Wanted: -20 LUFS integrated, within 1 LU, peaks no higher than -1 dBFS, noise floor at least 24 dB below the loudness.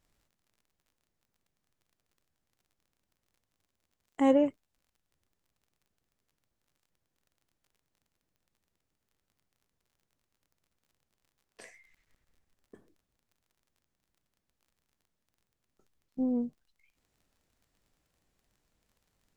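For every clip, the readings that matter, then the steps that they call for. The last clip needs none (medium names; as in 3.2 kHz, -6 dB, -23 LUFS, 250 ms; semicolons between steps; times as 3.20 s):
tick rate 23 per s; loudness -29.0 LUFS; peak level -13.0 dBFS; loudness target -20.0 LUFS
-> de-click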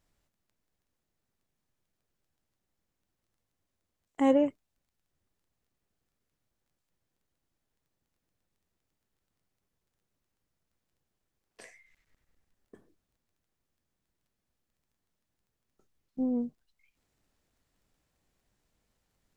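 tick rate 0 per s; loudness -29.0 LUFS; peak level -13.0 dBFS; loudness target -20.0 LUFS
-> trim +9 dB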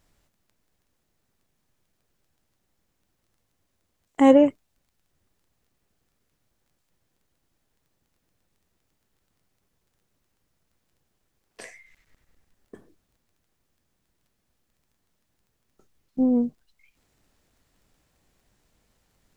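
loudness -20.0 LUFS; peak level -4.0 dBFS; noise floor -75 dBFS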